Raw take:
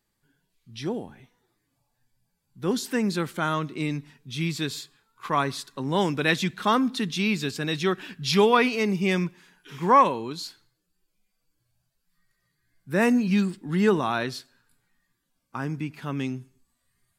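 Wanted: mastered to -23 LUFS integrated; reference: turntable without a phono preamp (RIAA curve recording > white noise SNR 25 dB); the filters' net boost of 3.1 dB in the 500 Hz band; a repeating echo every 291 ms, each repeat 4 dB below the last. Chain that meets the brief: RIAA curve recording; peaking EQ 500 Hz +7.5 dB; feedback delay 291 ms, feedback 63%, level -4 dB; white noise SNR 25 dB; trim -1 dB

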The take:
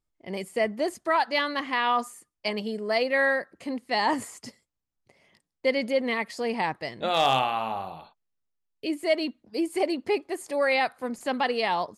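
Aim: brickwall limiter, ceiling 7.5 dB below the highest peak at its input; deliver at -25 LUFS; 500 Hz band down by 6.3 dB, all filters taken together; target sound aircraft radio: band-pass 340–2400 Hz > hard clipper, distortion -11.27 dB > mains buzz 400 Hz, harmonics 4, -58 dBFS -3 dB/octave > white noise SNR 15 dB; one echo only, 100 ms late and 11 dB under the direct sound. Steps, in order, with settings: peaking EQ 500 Hz -7 dB; peak limiter -20.5 dBFS; band-pass 340–2400 Hz; delay 100 ms -11 dB; hard clipper -29 dBFS; mains buzz 400 Hz, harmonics 4, -58 dBFS -3 dB/octave; white noise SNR 15 dB; trim +10 dB

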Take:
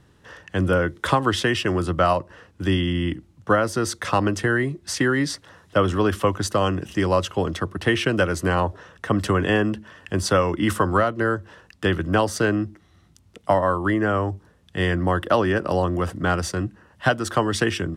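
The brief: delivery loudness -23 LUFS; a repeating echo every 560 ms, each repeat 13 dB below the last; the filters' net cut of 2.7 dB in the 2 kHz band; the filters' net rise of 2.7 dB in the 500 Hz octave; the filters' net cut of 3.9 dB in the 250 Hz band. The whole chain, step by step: peaking EQ 250 Hz -8 dB; peaking EQ 500 Hz +5.5 dB; peaking EQ 2 kHz -4 dB; feedback delay 560 ms, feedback 22%, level -13 dB; trim -0.5 dB

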